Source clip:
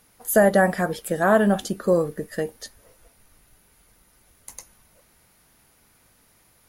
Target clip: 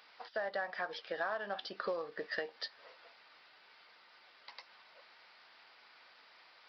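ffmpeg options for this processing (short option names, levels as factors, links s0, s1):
-af "highpass=820,acompressor=threshold=0.0112:ratio=12,aresample=11025,acrusher=bits=6:mode=log:mix=0:aa=0.000001,aresample=44100,volume=1.78"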